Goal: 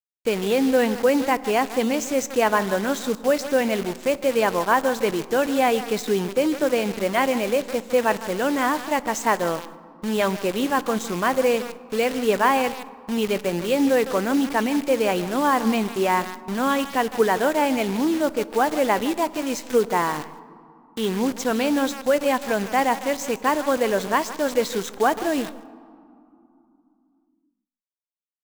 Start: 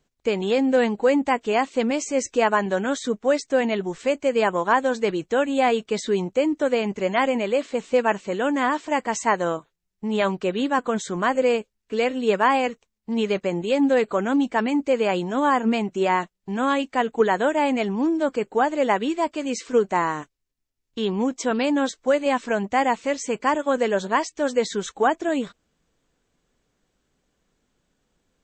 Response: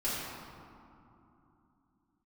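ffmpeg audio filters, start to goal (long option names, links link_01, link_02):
-filter_complex "[0:a]asplit=2[link_01][link_02];[link_02]adelay=157.4,volume=-15dB,highshelf=frequency=4000:gain=-3.54[link_03];[link_01][link_03]amix=inputs=2:normalize=0,acrusher=bits=6:dc=4:mix=0:aa=0.000001,asplit=2[link_04][link_05];[1:a]atrim=start_sample=2205,adelay=23[link_06];[link_05][link_06]afir=irnorm=-1:irlink=0,volume=-24.5dB[link_07];[link_04][link_07]amix=inputs=2:normalize=0"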